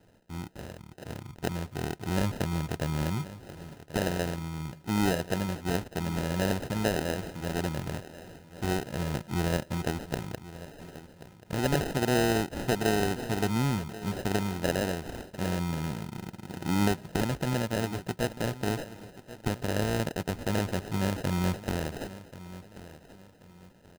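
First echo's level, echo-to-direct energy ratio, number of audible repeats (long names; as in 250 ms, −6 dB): −16.0 dB, −15.5 dB, 2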